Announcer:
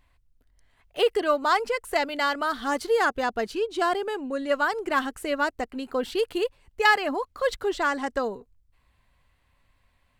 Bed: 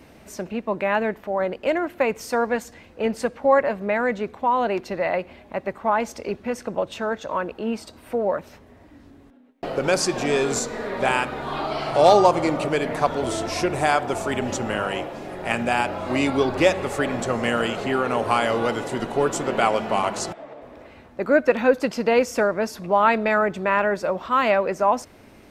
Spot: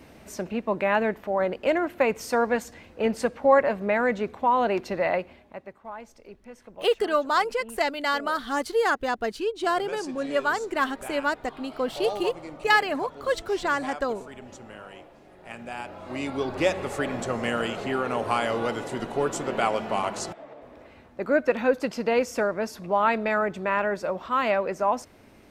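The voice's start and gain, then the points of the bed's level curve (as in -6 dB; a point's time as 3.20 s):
5.85 s, -0.5 dB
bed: 5.13 s -1 dB
5.83 s -18 dB
15.35 s -18 dB
16.77 s -4.5 dB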